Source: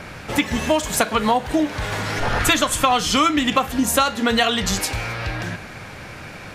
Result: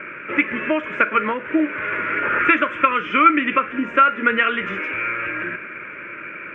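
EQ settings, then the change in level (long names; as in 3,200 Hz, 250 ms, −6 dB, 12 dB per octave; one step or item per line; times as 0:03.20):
loudspeaker in its box 310–2,500 Hz, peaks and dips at 350 Hz +9 dB, 610 Hz +8 dB, 1,400 Hz +8 dB, 2,400 Hz +10 dB
phaser with its sweep stopped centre 1,800 Hz, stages 4
+1.0 dB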